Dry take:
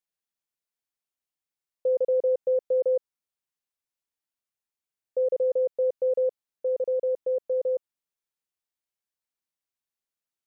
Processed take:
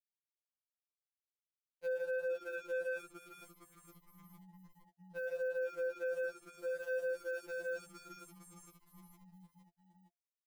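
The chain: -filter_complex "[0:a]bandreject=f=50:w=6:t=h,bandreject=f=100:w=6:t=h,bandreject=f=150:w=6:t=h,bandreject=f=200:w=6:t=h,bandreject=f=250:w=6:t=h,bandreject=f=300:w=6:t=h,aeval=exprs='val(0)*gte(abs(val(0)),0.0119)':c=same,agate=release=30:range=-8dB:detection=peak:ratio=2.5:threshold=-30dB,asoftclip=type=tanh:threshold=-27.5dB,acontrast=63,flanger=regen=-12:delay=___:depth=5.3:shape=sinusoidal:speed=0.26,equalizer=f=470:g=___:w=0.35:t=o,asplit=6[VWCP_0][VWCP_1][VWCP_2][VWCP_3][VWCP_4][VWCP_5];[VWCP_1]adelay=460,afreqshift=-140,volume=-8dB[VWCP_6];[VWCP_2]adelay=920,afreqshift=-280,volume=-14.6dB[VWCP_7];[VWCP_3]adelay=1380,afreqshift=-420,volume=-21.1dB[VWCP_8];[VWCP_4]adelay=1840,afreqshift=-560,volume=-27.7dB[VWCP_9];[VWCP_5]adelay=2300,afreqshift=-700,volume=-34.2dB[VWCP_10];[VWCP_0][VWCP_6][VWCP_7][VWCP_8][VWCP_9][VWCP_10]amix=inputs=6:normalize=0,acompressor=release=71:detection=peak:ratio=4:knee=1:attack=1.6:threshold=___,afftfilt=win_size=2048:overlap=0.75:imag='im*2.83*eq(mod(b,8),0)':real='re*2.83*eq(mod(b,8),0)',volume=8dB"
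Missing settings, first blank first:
2.7, -13, -51dB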